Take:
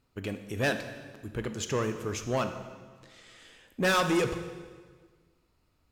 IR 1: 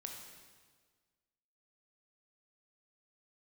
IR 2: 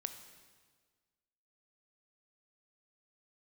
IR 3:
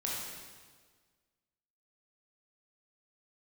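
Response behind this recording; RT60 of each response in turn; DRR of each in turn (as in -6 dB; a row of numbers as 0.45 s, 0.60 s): 2; 1.6 s, 1.6 s, 1.6 s; 1.0 dB, 7.5 dB, -5.0 dB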